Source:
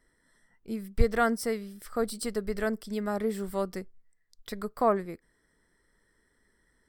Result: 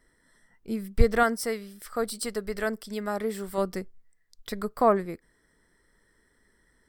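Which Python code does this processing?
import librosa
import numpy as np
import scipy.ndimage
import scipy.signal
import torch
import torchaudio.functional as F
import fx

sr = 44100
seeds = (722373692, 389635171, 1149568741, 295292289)

y = fx.low_shelf(x, sr, hz=420.0, db=-7.0, at=(1.23, 3.58))
y = y * librosa.db_to_amplitude(3.5)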